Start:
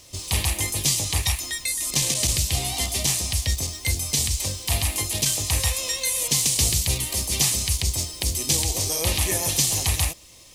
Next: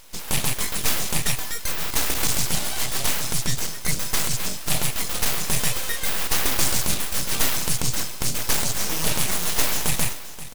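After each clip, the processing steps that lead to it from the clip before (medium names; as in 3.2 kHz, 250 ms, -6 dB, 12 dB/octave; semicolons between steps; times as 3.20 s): full-wave rectifier; delay 529 ms -14.5 dB; trim +2.5 dB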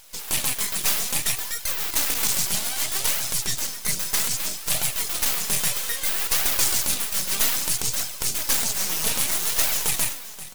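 tilt EQ +1.5 dB/octave; flange 0.62 Hz, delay 1.2 ms, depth 4.4 ms, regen +50%; trim +1 dB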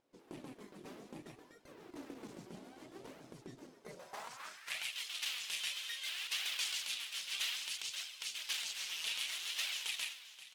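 band-pass sweep 310 Hz -> 3 kHz, 3.68–4.92 s; trim -5 dB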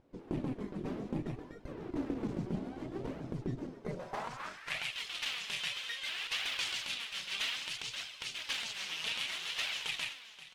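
RIAA curve playback; trim +7.5 dB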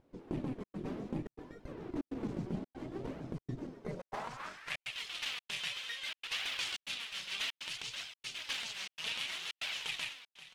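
trance gate "xxxxxx.xxxxx." 142 bpm -60 dB; trim -1.5 dB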